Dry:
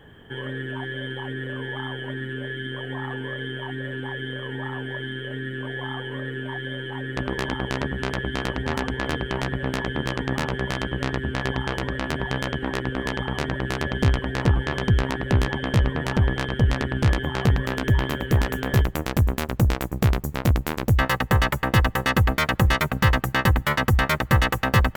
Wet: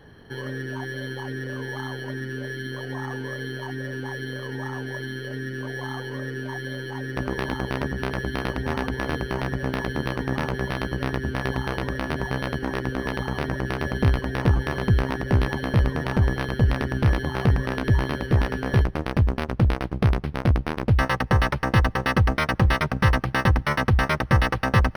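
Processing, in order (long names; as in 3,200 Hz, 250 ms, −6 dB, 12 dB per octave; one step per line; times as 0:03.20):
linearly interpolated sample-rate reduction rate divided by 6×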